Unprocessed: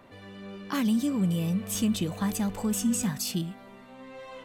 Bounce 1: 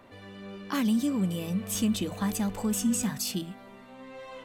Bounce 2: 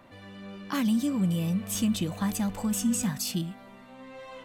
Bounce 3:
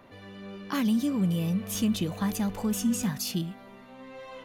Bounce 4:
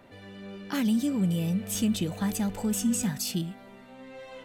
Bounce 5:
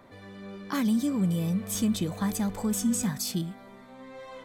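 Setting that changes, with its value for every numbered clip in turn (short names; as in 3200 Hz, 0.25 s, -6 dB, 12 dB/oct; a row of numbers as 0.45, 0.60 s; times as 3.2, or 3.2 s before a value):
notch, frequency: 160, 420, 8000, 1100, 2800 Hz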